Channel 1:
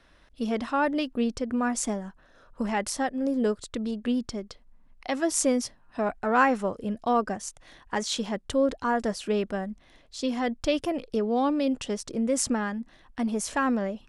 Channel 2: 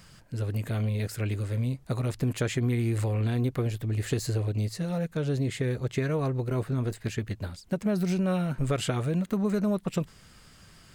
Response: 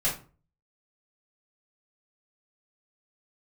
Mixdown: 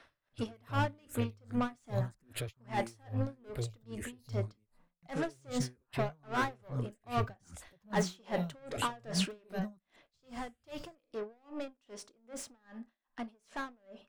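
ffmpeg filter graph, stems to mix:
-filter_complex "[0:a]asplit=2[link_01][link_02];[link_02]highpass=frequency=720:poles=1,volume=26dB,asoftclip=type=tanh:threshold=-9dB[link_03];[link_01][link_03]amix=inputs=2:normalize=0,lowpass=frequency=2200:poles=1,volume=-6dB,volume=-8dB,afade=type=in:start_time=7.8:duration=0.5:silence=0.473151,afade=type=out:start_time=9.27:duration=0.2:silence=0.237137,asplit=3[link_04][link_05][link_06];[link_05]volume=-18.5dB[link_07];[1:a]lowshelf=frequency=110:gain=10.5,alimiter=level_in=2dB:limit=-24dB:level=0:latency=1:release=12,volume=-2dB,asplit=2[link_08][link_09];[link_09]afreqshift=1.7[link_10];[link_08][link_10]amix=inputs=2:normalize=1,volume=0.5dB[link_11];[link_06]apad=whole_len=482874[link_12];[link_11][link_12]sidechaingate=range=-37dB:threshold=-57dB:ratio=16:detection=peak[link_13];[2:a]atrim=start_sample=2205[link_14];[link_07][link_14]afir=irnorm=-1:irlink=0[link_15];[link_04][link_13][link_15]amix=inputs=3:normalize=0,highshelf=frequency=7600:gain=5.5,aeval=exprs='val(0)*pow(10,-33*(0.5-0.5*cos(2*PI*2.5*n/s))/20)':channel_layout=same"

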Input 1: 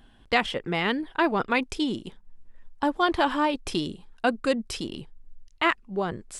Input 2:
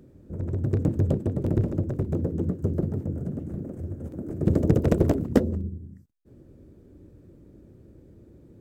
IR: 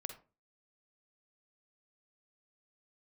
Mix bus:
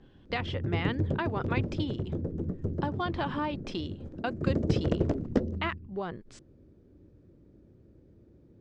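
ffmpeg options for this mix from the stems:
-filter_complex "[0:a]acompressor=threshold=-24dB:ratio=3,adynamicequalizer=threshold=0.00398:dfrequency=3900:dqfactor=0.7:tfrequency=3900:tqfactor=0.7:attack=5:release=100:ratio=0.375:range=2.5:mode=cutabove:tftype=highshelf,volume=-5.5dB[link_01];[1:a]volume=-6.5dB[link_02];[link_01][link_02]amix=inputs=2:normalize=0,lowpass=frequency=5900:width=0.5412,lowpass=frequency=5900:width=1.3066"

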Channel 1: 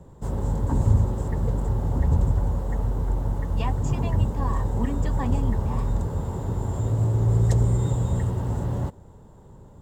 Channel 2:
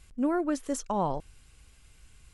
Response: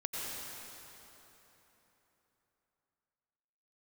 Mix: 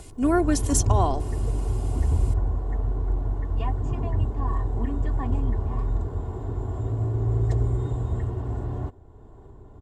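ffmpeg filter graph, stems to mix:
-filter_complex "[0:a]lowpass=frequency=1800:poles=1,acompressor=mode=upward:threshold=-37dB:ratio=2.5,volume=-3.5dB[link_01];[1:a]deesser=0.55,highshelf=frequency=3400:gain=11.5,volume=2.5dB[link_02];[link_01][link_02]amix=inputs=2:normalize=0,aecho=1:1:2.8:0.63"

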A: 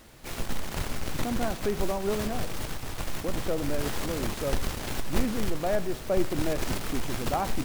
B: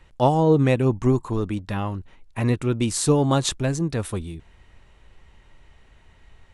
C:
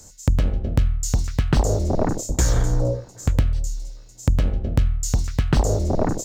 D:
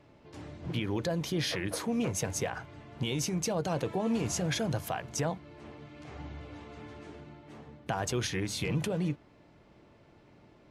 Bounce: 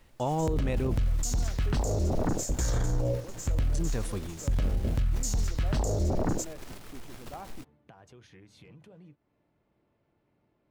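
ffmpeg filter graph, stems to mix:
ffmpeg -i stem1.wav -i stem2.wav -i stem3.wav -i stem4.wav -filter_complex "[0:a]volume=-14dB[link_01];[1:a]volume=-7dB,asplit=3[link_02][link_03][link_04];[link_02]atrim=end=0.99,asetpts=PTS-STARTPTS,afade=type=out:start_time=0.986:duration=0.004:curve=hsin[link_05];[link_03]atrim=start=0.99:end=3.74,asetpts=PTS-STARTPTS,volume=0[link_06];[link_04]atrim=start=3.74,asetpts=PTS-STARTPTS,afade=type=in:duration=0.004:curve=hsin[link_07];[link_05][link_06][link_07]concat=n=3:v=0:a=1[link_08];[2:a]adelay=200,volume=-3dB[link_09];[3:a]highshelf=frequency=4400:gain=-11,acompressor=threshold=-38dB:ratio=3,volume=-14dB[link_10];[link_01][link_08][link_09][link_10]amix=inputs=4:normalize=0,alimiter=limit=-21dB:level=0:latency=1:release=13" out.wav

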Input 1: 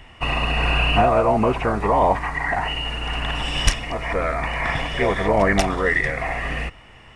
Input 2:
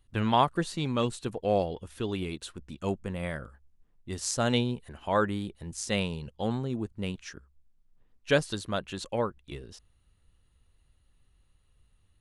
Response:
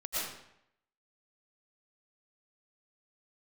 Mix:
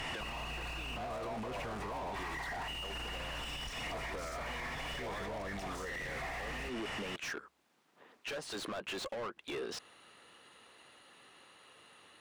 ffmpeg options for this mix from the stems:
-filter_complex "[0:a]bass=frequency=250:gain=7,treble=frequency=4000:gain=13,acompressor=threshold=-26dB:ratio=2.5,volume=-5dB[link_01];[1:a]highpass=270,acompressor=threshold=-36dB:ratio=6,volume=-0.5dB[link_02];[link_01][link_02]amix=inputs=2:normalize=0,asplit=2[link_03][link_04];[link_04]highpass=frequency=720:poles=1,volume=31dB,asoftclip=type=tanh:threshold=-25dB[link_05];[link_03][link_05]amix=inputs=2:normalize=0,lowpass=frequency=2100:poles=1,volume=-6dB,alimiter=level_in=10dB:limit=-24dB:level=0:latency=1:release=222,volume=-10dB"

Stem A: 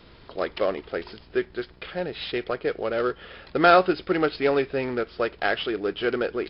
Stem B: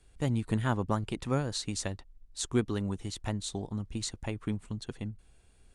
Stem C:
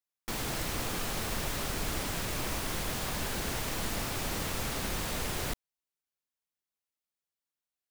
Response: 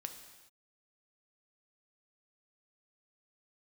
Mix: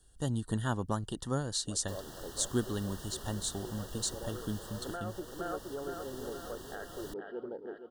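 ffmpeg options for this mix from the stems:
-filter_complex "[0:a]afwtdn=0.0501,highshelf=frequency=4500:gain=-10,adelay=1300,volume=-14.5dB,asplit=2[link_01][link_02];[link_02]volume=-9.5dB[link_03];[1:a]highshelf=frequency=5600:gain=11,volume=-3.5dB,asplit=2[link_04][link_05];[2:a]adelay=1600,volume=-13dB[link_06];[link_05]apad=whole_len=343591[link_07];[link_01][link_07]sidechaincompress=threshold=-42dB:ratio=8:attack=16:release=135[link_08];[link_08][link_06]amix=inputs=2:normalize=0,alimiter=level_in=6.5dB:limit=-24dB:level=0:latency=1:release=271,volume=-6.5dB,volume=0dB[link_09];[link_03]aecho=0:1:468|936|1404|1872|2340|2808|3276|3744:1|0.55|0.303|0.166|0.0915|0.0503|0.0277|0.0152[link_10];[link_04][link_09][link_10]amix=inputs=3:normalize=0,asuperstop=centerf=2300:order=20:qfactor=2.6"

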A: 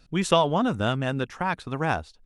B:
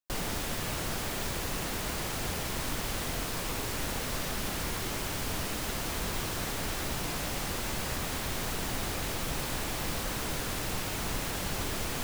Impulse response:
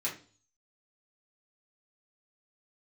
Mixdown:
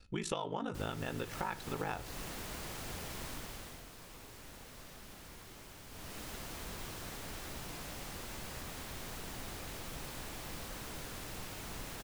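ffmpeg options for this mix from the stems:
-filter_complex "[0:a]aecho=1:1:2.3:0.39,aeval=exprs='val(0)*sin(2*PI*26*n/s)':channel_layout=same,volume=-2dB,asplit=2[link_01][link_02];[link_02]volume=-15dB[link_03];[1:a]adelay=650,volume=-2dB,afade=type=out:start_time=3.24:duration=0.61:silence=0.354813,afade=type=in:start_time=5.88:duration=0.33:silence=0.421697[link_04];[2:a]atrim=start_sample=2205[link_05];[link_03][link_05]afir=irnorm=-1:irlink=0[link_06];[link_01][link_04][link_06]amix=inputs=3:normalize=0,acompressor=threshold=-35dB:ratio=5"

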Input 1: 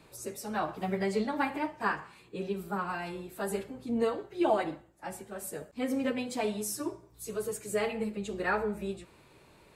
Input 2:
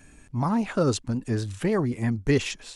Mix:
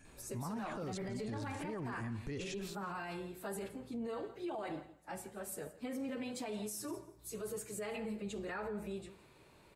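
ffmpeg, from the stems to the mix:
ffmpeg -i stem1.wav -i stem2.wav -filter_complex "[0:a]alimiter=level_in=1dB:limit=-24dB:level=0:latency=1,volume=-1dB,adelay=50,volume=-4dB,asplit=2[link_01][link_02];[link_02]volume=-19dB[link_03];[1:a]alimiter=limit=-20dB:level=0:latency=1:release=171,volume=-8.5dB,asplit=2[link_04][link_05];[link_05]volume=-16.5dB[link_06];[link_03][link_06]amix=inputs=2:normalize=0,aecho=0:1:167|334|501:1|0.17|0.0289[link_07];[link_01][link_04][link_07]amix=inputs=3:normalize=0,alimiter=level_in=10dB:limit=-24dB:level=0:latency=1:release=18,volume=-10dB" out.wav

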